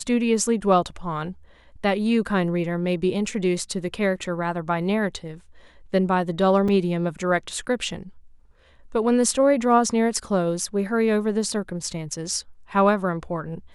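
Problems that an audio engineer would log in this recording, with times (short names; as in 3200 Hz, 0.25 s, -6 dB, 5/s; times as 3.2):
6.68 gap 4.4 ms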